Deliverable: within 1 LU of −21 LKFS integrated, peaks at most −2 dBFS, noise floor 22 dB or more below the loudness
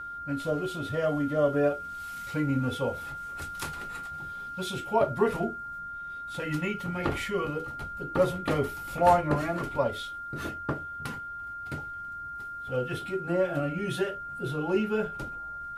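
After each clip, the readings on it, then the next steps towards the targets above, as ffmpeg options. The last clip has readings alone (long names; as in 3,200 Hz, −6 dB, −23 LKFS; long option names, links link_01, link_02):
interfering tone 1,400 Hz; level of the tone −36 dBFS; integrated loudness −30.5 LKFS; sample peak −7.5 dBFS; target loudness −21.0 LKFS
→ -af "bandreject=frequency=1400:width=30"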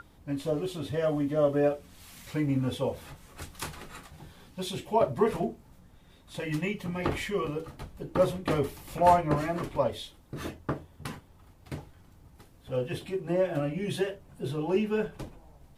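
interfering tone none found; integrated loudness −30.0 LKFS; sample peak −7.5 dBFS; target loudness −21.0 LKFS
→ -af "volume=9dB,alimiter=limit=-2dB:level=0:latency=1"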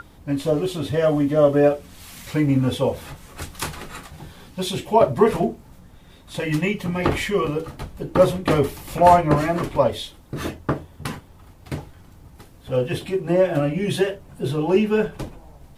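integrated loudness −21.5 LKFS; sample peak −2.0 dBFS; background noise floor −48 dBFS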